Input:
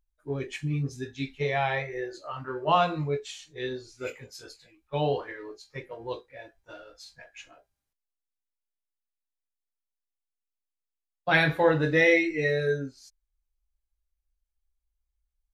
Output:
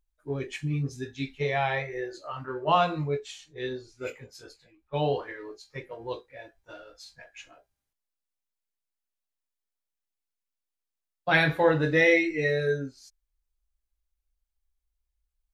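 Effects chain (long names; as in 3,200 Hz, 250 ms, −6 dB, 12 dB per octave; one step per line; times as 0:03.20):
0:02.46–0:05.09: one half of a high-frequency compander decoder only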